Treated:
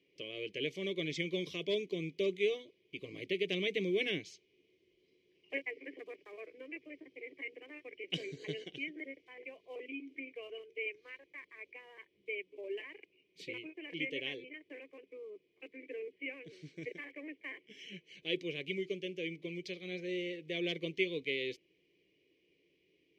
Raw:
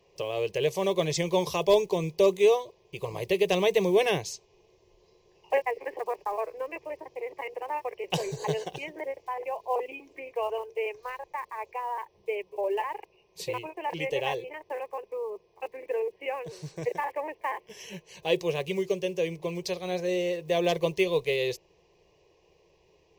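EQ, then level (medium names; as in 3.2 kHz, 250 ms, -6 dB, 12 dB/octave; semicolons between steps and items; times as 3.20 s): vowel filter i; +7.0 dB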